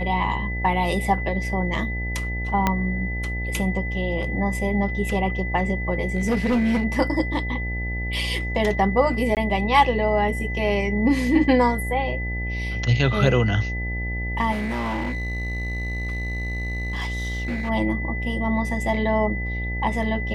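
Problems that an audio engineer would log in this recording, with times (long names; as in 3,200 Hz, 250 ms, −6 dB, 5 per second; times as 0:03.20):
mains buzz 60 Hz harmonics 15 −28 dBFS
whistle 2,000 Hz −30 dBFS
0:02.67: click −6 dBFS
0:06.15–0:06.85: clipping −17 dBFS
0:09.35–0:09.37: drop-out 18 ms
0:14.51–0:17.70: clipping −23 dBFS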